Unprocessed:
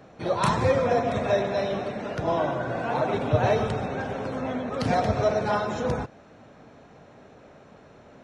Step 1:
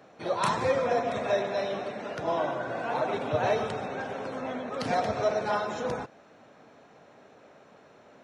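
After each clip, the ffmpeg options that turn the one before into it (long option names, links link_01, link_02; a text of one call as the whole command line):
ffmpeg -i in.wav -af "highpass=frequency=340:poles=1,volume=-2dB" out.wav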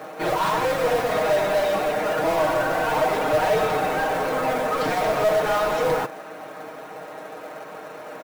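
ffmpeg -i in.wav -filter_complex "[0:a]asplit=2[link_01][link_02];[link_02]highpass=frequency=720:poles=1,volume=28dB,asoftclip=type=tanh:threshold=-14dB[link_03];[link_01][link_03]amix=inputs=2:normalize=0,lowpass=frequency=1300:poles=1,volume=-6dB,acrusher=bits=4:mode=log:mix=0:aa=0.000001,aecho=1:1:6.4:0.65,volume=-1dB" out.wav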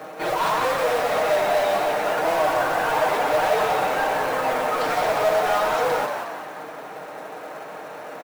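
ffmpeg -i in.wav -filter_complex "[0:a]acrossover=split=400[link_01][link_02];[link_01]asoftclip=type=tanh:threshold=-36dB[link_03];[link_03][link_02]amix=inputs=2:normalize=0,asplit=7[link_04][link_05][link_06][link_07][link_08][link_09][link_10];[link_05]adelay=180,afreqshift=100,volume=-6dB[link_11];[link_06]adelay=360,afreqshift=200,volume=-12.6dB[link_12];[link_07]adelay=540,afreqshift=300,volume=-19.1dB[link_13];[link_08]adelay=720,afreqshift=400,volume=-25.7dB[link_14];[link_09]adelay=900,afreqshift=500,volume=-32.2dB[link_15];[link_10]adelay=1080,afreqshift=600,volume=-38.8dB[link_16];[link_04][link_11][link_12][link_13][link_14][link_15][link_16]amix=inputs=7:normalize=0" out.wav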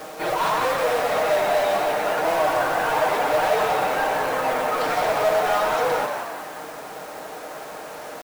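ffmpeg -i in.wav -af "acrusher=bits=6:mix=0:aa=0.000001" out.wav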